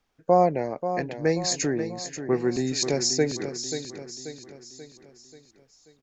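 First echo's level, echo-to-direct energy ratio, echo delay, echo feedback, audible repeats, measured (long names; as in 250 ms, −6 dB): −9.5 dB, −8.5 dB, 535 ms, 49%, 5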